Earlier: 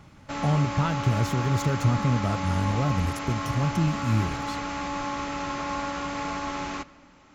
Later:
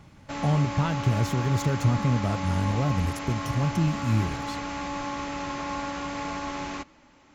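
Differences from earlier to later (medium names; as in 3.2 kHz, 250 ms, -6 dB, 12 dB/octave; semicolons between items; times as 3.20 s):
background: send -10.0 dB; master: add peaking EQ 1.3 kHz -5 dB 0.2 oct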